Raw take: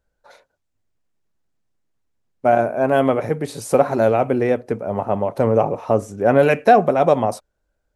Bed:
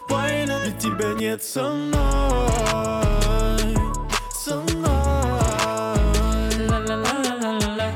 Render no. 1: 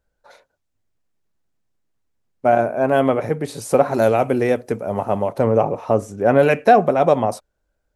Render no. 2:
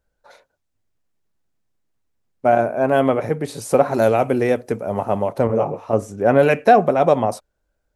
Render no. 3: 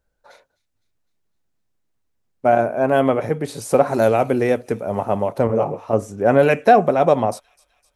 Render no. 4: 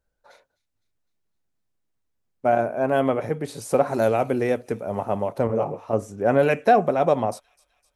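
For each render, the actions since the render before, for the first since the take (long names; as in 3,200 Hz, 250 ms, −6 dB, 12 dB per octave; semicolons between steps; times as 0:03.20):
0:03.94–0:05.33: high-shelf EQ 4,500 Hz +12 dB
0:05.47–0:05.93: micro pitch shift up and down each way 45 cents
delay with a high-pass on its return 255 ms, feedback 58%, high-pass 3,400 Hz, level −19.5 dB
level −4.5 dB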